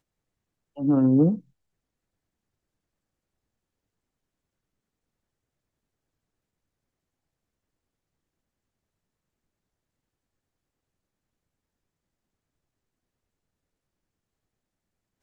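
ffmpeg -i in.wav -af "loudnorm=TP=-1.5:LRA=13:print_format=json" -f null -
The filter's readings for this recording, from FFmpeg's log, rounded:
"input_i" : "-21.7",
"input_tp" : "-11.2",
"input_lra" : "1.3",
"input_thresh" : "-33.0",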